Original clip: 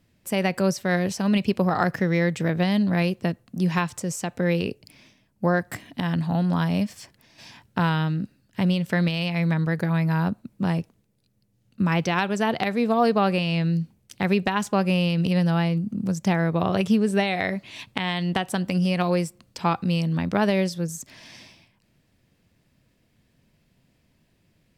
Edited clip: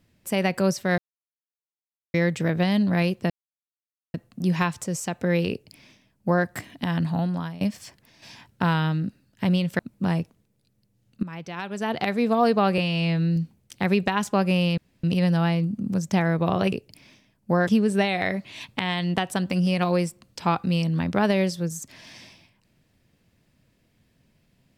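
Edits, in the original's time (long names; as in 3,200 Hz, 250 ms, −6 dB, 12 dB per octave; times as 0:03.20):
0:00.98–0:02.14: silence
0:03.30: splice in silence 0.84 s
0:04.66–0:05.61: duplicate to 0:16.86
0:06.27–0:06.77: fade out, to −20 dB
0:08.95–0:10.38: remove
0:11.82–0:12.67: fade in quadratic, from −15.5 dB
0:13.37–0:13.76: time-stretch 1.5×
0:15.17: splice in room tone 0.26 s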